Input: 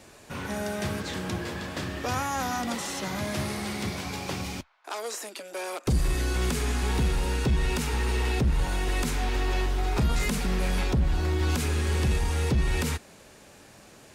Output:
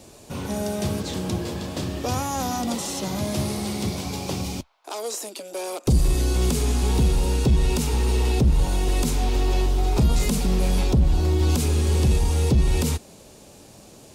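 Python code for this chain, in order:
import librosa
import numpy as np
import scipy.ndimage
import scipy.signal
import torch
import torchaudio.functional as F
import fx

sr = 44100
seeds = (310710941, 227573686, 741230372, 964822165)

y = fx.peak_eq(x, sr, hz=1700.0, db=-12.5, octaves=1.3)
y = y * librosa.db_to_amplitude(6.0)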